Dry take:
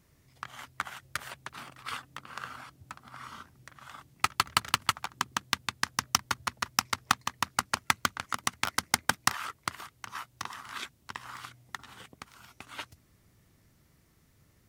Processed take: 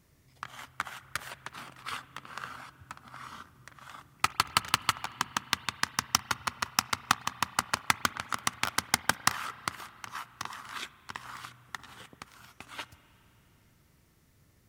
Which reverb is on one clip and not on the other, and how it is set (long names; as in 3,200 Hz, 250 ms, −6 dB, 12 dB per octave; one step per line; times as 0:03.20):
spring reverb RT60 3.5 s, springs 34/51 ms, chirp 70 ms, DRR 16.5 dB